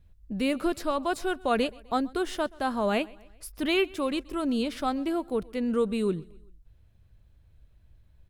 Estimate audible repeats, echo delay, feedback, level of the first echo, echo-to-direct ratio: 2, 128 ms, 50%, -24.0 dB, -23.0 dB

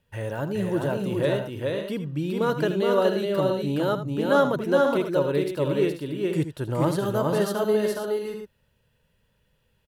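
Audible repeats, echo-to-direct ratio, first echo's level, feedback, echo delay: 4, -1.0 dB, -11.5 dB, no regular repeats, 80 ms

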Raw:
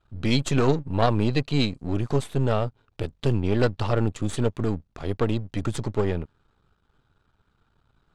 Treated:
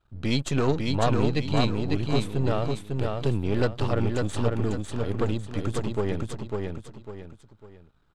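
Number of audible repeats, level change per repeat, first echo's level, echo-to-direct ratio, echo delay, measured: 3, -9.0 dB, -3.5 dB, -3.0 dB, 550 ms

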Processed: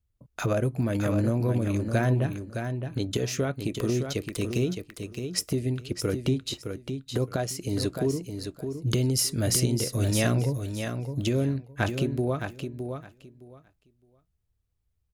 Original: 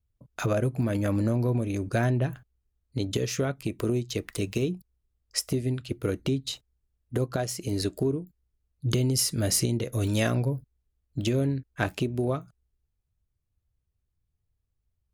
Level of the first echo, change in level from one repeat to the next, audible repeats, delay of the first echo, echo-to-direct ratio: -7.0 dB, -15.0 dB, 2, 614 ms, -7.0 dB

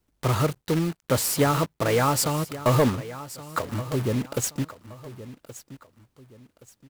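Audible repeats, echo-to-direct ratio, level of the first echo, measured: 2, -15.0 dB, -15.5 dB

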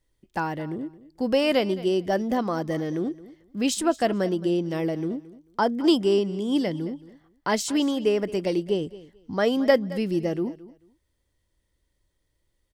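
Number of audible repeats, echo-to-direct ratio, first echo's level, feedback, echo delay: 2, -18.0 dB, -18.0 dB, 19%, 220 ms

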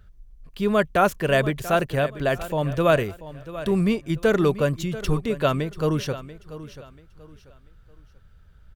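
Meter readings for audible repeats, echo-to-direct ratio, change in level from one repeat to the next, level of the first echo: 2, -14.5 dB, -10.5 dB, -15.0 dB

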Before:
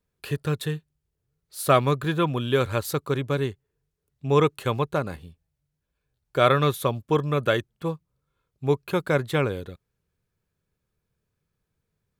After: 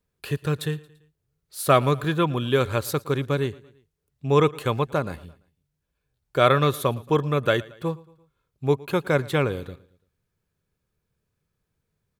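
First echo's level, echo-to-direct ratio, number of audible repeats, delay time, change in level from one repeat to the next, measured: -22.0 dB, -21.0 dB, 3, 113 ms, -6.0 dB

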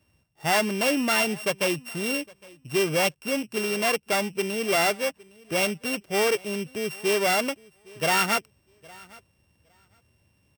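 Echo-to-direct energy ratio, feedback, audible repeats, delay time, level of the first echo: -24.0 dB, no regular repeats, 1, 811 ms, -24.0 dB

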